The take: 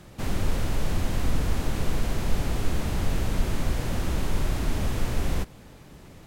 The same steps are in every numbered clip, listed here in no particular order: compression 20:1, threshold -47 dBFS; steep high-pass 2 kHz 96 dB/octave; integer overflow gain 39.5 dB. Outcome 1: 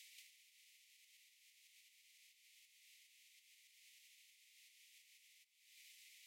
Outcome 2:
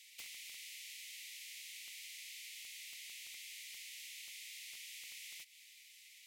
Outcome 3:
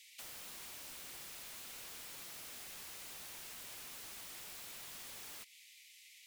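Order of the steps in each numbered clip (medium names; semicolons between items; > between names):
compression > steep high-pass > integer overflow; steep high-pass > compression > integer overflow; steep high-pass > integer overflow > compression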